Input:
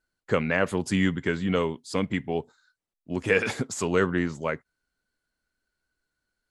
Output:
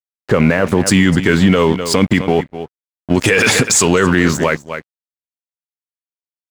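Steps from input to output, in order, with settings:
high-shelf EQ 2,100 Hz −8 dB, from 0:00.78 +2 dB, from 0:03.16 +8.5 dB
dead-zone distortion −44.5 dBFS
single-tap delay 252 ms −19 dB
boost into a limiter +22.5 dB
level −1 dB

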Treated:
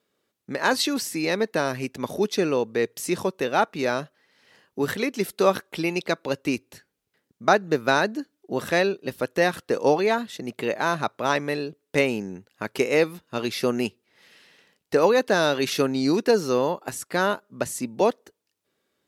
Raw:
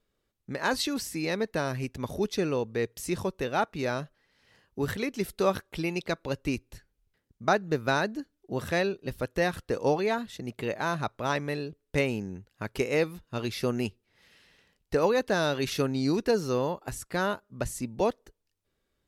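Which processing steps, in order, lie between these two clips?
high-pass filter 200 Hz 12 dB per octave
level +6 dB

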